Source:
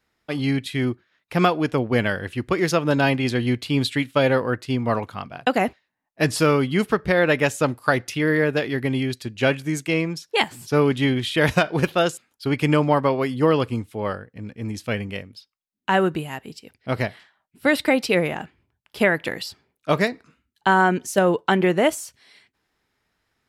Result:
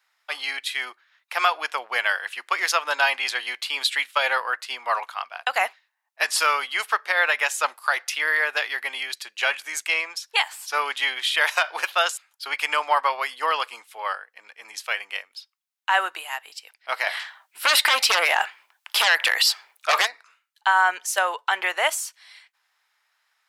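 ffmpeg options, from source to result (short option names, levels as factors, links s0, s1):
-filter_complex "[0:a]asplit=3[s0][s1][s2];[s0]afade=t=out:st=17.06:d=0.02[s3];[s1]aeval=exprs='0.562*sin(PI/2*3.16*val(0)/0.562)':c=same,afade=t=in:st=17.06:d=0.02,afade=t=out:st=20.05:d=0.02[s4];[s2]afade=t=in:st=20.05:d=0.02[s5];[s3][s4][s5]amix=inputs=3:normalize=0,highpass=f=840:w=0.5412,highpass=f=840:w=1.3066,alimiter=limit=0.237:level=0:latency=1:release=94,volume=1.68"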